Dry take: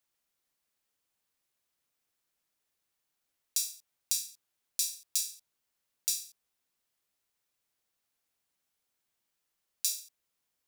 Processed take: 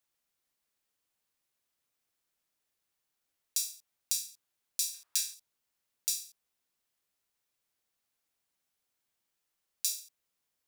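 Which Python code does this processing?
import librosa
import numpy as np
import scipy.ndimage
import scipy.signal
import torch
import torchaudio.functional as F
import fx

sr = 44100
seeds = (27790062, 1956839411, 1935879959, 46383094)

y = fx.peak_eq(x, sr, hz=1200.0, db=14.0, octaves=1.9, at=(4.94, 5.34))
y = y * librosa.db_to_amplitude(-1.0)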